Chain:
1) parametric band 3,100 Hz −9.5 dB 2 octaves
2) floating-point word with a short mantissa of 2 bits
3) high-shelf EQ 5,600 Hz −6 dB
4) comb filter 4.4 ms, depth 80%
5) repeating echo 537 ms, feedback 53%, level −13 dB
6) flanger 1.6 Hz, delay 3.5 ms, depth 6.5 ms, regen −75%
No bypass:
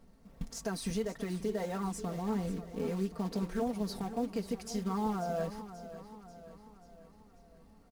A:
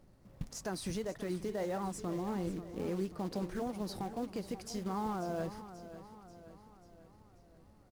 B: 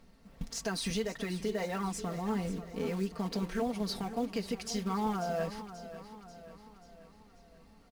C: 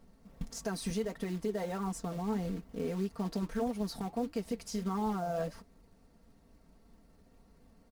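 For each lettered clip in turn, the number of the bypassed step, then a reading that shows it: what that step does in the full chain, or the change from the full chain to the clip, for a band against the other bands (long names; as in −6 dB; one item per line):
4, change in crest factor −2.0 dB
1, 4 kHz band +5.5 dB
5, change in momentary loudness spread −10 LU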